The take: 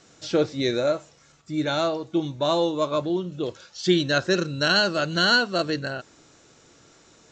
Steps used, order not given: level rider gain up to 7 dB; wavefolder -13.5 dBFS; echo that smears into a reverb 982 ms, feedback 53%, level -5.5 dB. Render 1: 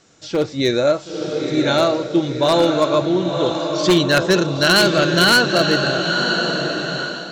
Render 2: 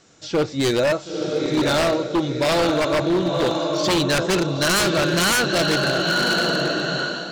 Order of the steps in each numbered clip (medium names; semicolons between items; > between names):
echo that smears into a reverb > wavefolder > level rider; echo that smears into a reverb > level rider > wavefolder